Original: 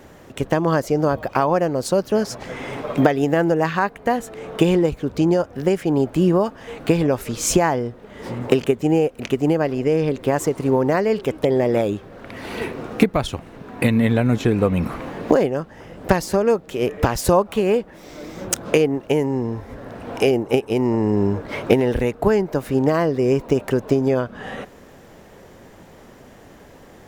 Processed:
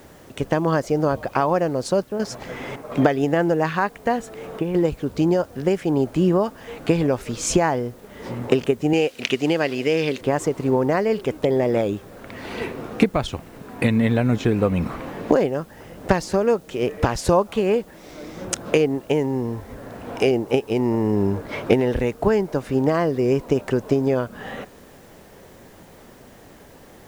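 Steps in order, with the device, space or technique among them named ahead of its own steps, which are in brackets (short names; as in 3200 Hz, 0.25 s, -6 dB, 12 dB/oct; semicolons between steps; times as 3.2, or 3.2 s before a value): worn cassette (LPF 8300 Hz; wow and flutter 26 cents; level dips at 2.04/2.76/4.59, 0.153 s -7 dB; white noise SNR 35 dB); 8.93–10.21 weighting filter D; gain -1.5 dB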